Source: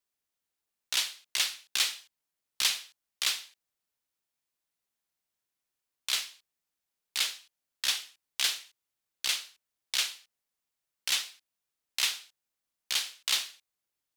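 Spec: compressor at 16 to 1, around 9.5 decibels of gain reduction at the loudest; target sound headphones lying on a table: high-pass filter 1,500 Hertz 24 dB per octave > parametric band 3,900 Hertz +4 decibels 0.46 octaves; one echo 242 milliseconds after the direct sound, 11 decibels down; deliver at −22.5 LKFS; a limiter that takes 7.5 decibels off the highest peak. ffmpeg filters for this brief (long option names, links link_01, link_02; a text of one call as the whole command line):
ffmpeg -i in.wav -af "acompressor=threshold=-32dB:ratio=16,alimiter=limit=-23dB:level=0:latency=1,highpass=frequency=1500:width=0.5412,highpass=frequency=1500:width=1.3066,equalizer=frequency=3900:width_type=o:width=0.46:gain=4,aecho=1:1:242:0.282,volume=16.5dB" out.wav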